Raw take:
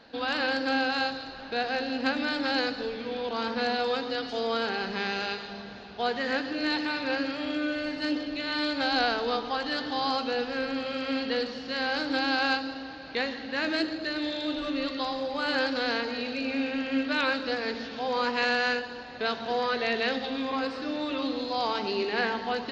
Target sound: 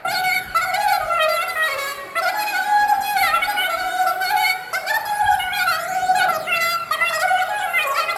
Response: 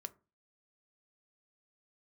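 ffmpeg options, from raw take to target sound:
-filter_complex "[0:a]asetrate=122598,aresample=44100,aphaser=in_gain=1:out_gain=1:delay=4:decay=0.54:speed=0.16:type=triangular,asplit=2[link_01][link_02];[1:a]atrim=start_sample=2205,lowpass=3100[link_03];[link_02][link_03]afir=irnorm=-1:irlink=0,volume=12dB[link_04];[link_01][link_04]amix=inputs=2:normalize=0"

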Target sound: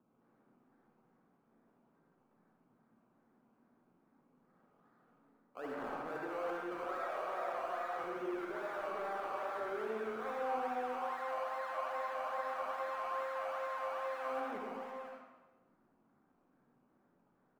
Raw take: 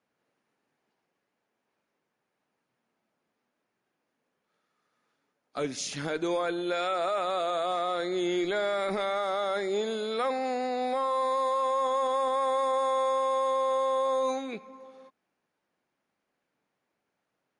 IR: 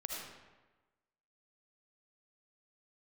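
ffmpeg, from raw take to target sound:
-filter_complex "[0:a]acrossover=split=220[link_01][link_02];[link_01]acompressor=mode=upward:threshold=-50dB:ratio=2.5[link_03];[link_02]acrusher=samples=20:mix=1:aa=0.000001:lfo=1:lforange=12:lforate=2.4[link_04];[link_03][link_04]amix=inputs=2:normalize=0,equalizer=frequency=1200:width_type=o:width=1.3:gain=6.5,areverse,acompressor=threshold=-39dB:ratio=6,areverse,acrossover=split=230 2200:gain=0.224 1 0.158[link_05][link_06][link_07];[link_05][link_06][link_07]amix=inputs=3:normalize=0,bandreject=frequency=50:width_type=h:width=6,bandreject=frequency=100:width_type=h:width=6,bandreject=frequency=150:width_type=h:width=6,bandreject=frequency=200:width_type=h:width=6,aecho=1:1:104|208|312|416|520:0.211|0.114|0.0616|0.0333|0.018[link_08];[1:a]atrim=start_sample=2205,asetrate=52920,aresample=44100[link_09];[link_08][link_09]afir=irnorm=-1:irlink=0,volume=2.5dB"

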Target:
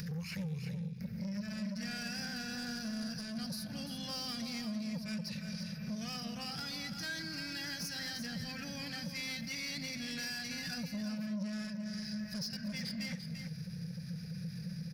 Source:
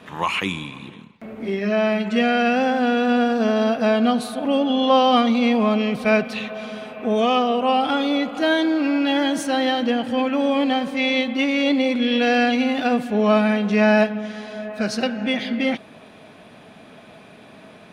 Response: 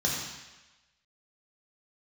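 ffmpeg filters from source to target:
-filter_complex "[0:a]firequalizer=gain_entry='entry(100,0);entry(170,13);entry(250,-26);entry(430,-24);entry(1100,-29);entry(1600,-12);entry(3300,-23);entry(5000,9);entry(7600,-16);entry(12000,3)':delay=0.05:min_phase=1,acompressor=mode=upward:threshold=-36dB:ratio=2.5,equalizer=frequency=490:width_type=o:width=1.6:gain=-9.5,acompressor=threshold=-35dB:ratio=6,atempo=1.2,asoftclip=type=tanh:threshold=-38.5dB,asplit=2[link_01][link_02];[link_02]aecho=0:1:343:0.398[link_03];[link_01][link_03]amix=inputs=2:normalize=0,volume=3dB"

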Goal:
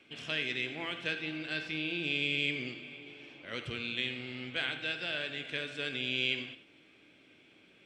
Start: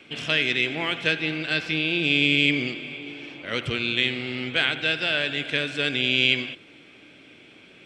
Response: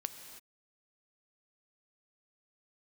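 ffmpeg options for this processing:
-filter_complex "[1:a]atrim=start_sample=2205,afade=type=out:start_time=0.25:duration=0.01,atrim=end_sample=11466,asetrate=79380,aresample=44100[link_01];[0:a][link_01]afir=irnorm=-1:irlink=0,volume=-5dB"

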